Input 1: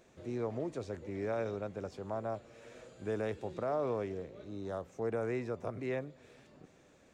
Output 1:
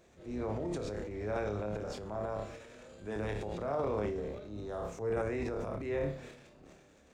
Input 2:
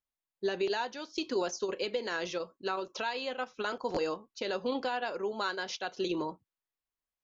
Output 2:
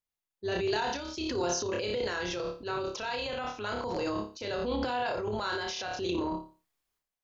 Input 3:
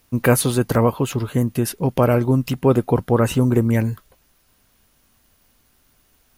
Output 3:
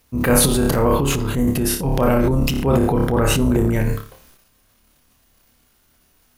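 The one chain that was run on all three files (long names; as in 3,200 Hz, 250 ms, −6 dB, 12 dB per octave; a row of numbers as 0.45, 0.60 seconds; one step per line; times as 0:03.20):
sub-octave generator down 2 octaves, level −6 dB
flutter between parallel walls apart 4.9 metres, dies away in 0.35 s
transient designer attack −4 dB, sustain +10 dB
level −1.5 dB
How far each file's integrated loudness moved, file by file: +1.0, +1.5, +1.0 LU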